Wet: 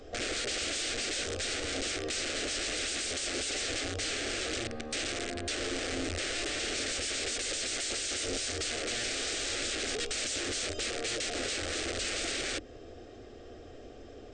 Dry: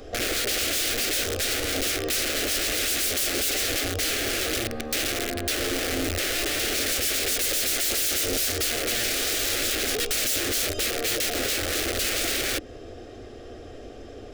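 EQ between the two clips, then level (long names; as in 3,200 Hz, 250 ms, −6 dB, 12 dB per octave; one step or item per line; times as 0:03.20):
linear-phase brick-wall low-pass 9,000 Hz
mains-hum notches 50/100 Hz
−7.0 dB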